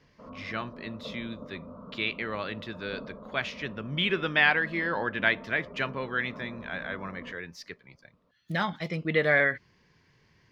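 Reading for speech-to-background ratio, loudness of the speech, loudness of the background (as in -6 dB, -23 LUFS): 16.5 dB, -29.5 LUFS, -46.0 LUFS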